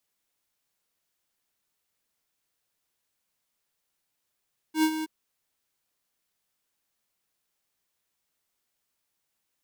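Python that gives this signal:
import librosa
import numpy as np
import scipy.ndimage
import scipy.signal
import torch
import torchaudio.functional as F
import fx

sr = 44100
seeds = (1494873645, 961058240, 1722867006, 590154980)

y = fx.adsr_tone(sr, wave='square', hz=314.0, attack_ms=91.0, decay_ms=70.0, sustain_db=-10.5, held_s=0.3, release_ms=24.0, level_db=-20.5)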